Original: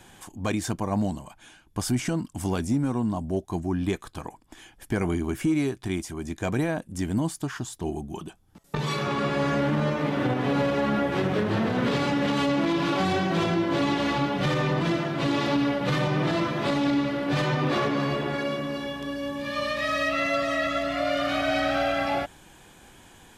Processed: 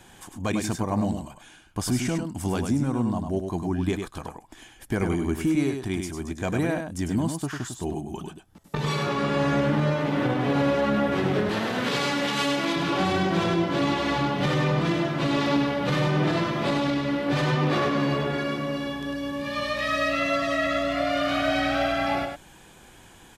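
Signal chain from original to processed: 11.49–12.76 s: tilt EQ +2.5 dB/octave; on a send: delay 100 ms -6 dB

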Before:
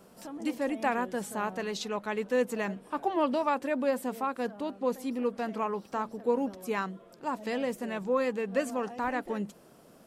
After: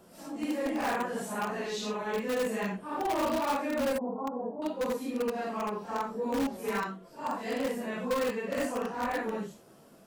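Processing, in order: phase randomisation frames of 200 ms; 3.98–4.62 s: Chebyshev band-pass 130–990 Hz, order 4; in parallel at -7.5 dB: integer overflow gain 23 dB; on the sum: trim -3 dB

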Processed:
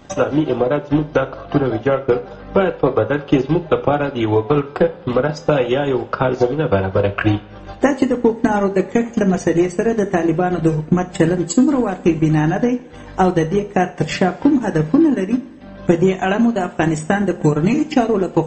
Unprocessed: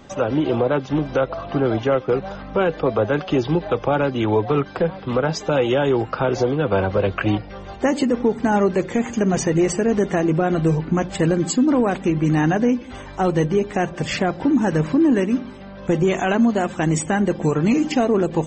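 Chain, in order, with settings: transient shaper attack +7 dB, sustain -11 dB; two-slope reverb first 0.38 s, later 3 s, from -21 dB, DRR 8 dB

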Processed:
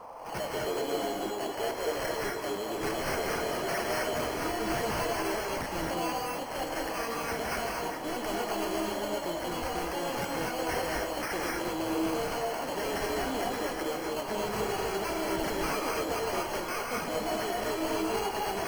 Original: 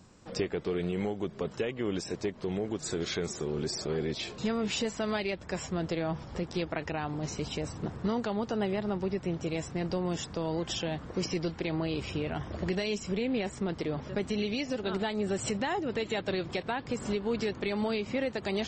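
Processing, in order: pitch shift switched off and on +7.5 st, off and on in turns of 255 ms; high-pass 340 Hz 12 dB/octave; treble shelf 4.3 kHz +11 dB; sample-and-hold 12×; overload inside the chain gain 32 dB; on a send: reverse echo 96 ms -14.5 dB; on the sum: band noise 480–1100 Hz -47 dBFS; gated-style reverb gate 280 ms rising, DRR -2 dB

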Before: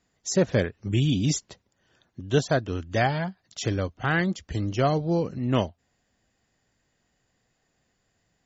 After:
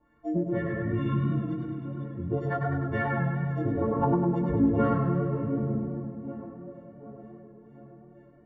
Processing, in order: partials quantised in pitch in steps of 4 st; in parallel at -5 dB: sample-and-hold 18×; on the sum: peaking EQ 5 kHz -14 dB 0.46 oct; LFO low-pass sine 2.1 Hz 360–1700 Hz; bass shelf 150 Hz +9.5 dB; tape echo 743 ms, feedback 64%, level -21 dB, low-pass 1.2 kHz; flange 1.1 Hz, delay 3.2 ms, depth 2.9 ms, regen +40%; on a send at -3 dB: reverberation RT60 0.70 s, pre-delay 93 ms; on the sum: compression 6:1, threshold -27 dBFS, peak gain reduction 18.5 dB; 3.81–4.94 s: small resonant body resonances 270/460/920 Hz, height 10 dB, ringing for 30 ms; modulated delay 102 ms, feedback 74%, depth 57 cents, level -8.5 dB

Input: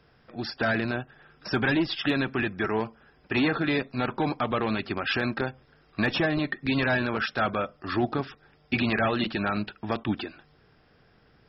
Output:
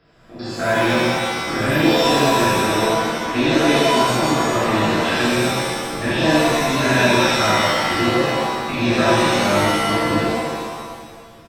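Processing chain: spectrogram pixelated in time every 100 ms; frequency-shifting echo 397 ms, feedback 43%, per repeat -34 Hz, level -17.5 dB; pitch-shifted reverb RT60 1.4 s, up +7 st, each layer -2 dB, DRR -8 dB

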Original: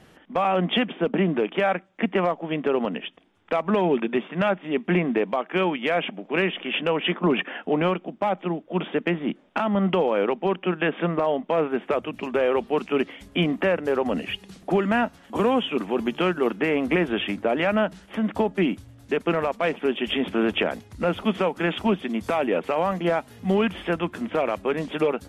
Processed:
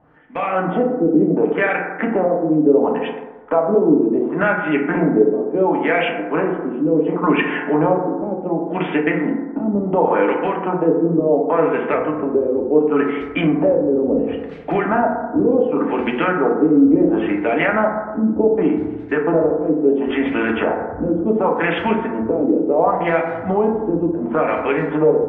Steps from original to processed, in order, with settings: level rider gain up to 11.5 dB; LFO low-pass sine 0.7 Hz 320–2400 Hz; FDN reverb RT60 1.1 s, low-frequency decay 0.9×, high-frequency decay 0.3×, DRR -0.5 dB; in parallel at +1 dB: compression, threshold -11 dBFS, peak gain reduction 13.5 dB; on the sum: trim -13 dB

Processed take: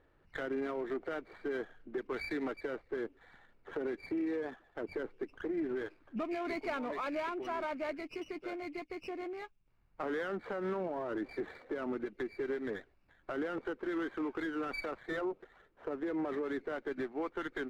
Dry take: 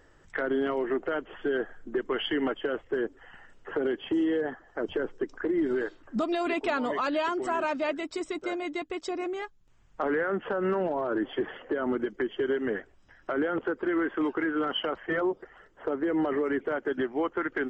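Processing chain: knee-point frequency compression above 2.1 kHz 4:1; level-controlled noise filter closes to 1.6 kHz, open at -26 dBFS; sliding maximum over 5 samples; trim -8.5 dB

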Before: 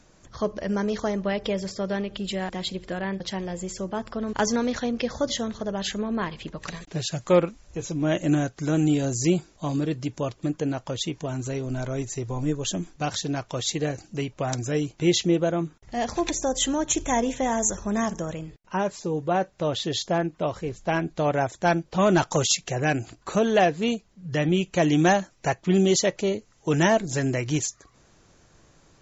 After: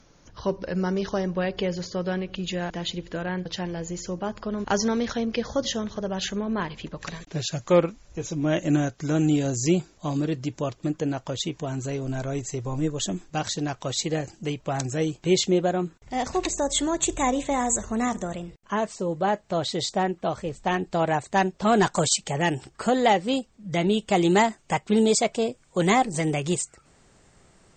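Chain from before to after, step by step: gliding tape speed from 91% -> 118%

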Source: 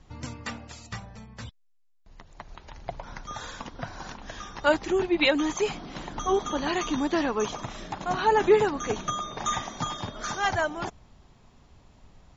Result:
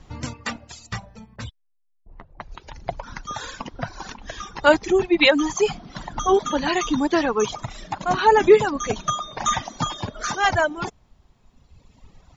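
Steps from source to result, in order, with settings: reverb removal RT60 1.9 s; 1.36–2.52 s: level-controlled noise filter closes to 320 Hz, open at -37.5 dBFS; trim +7 dB

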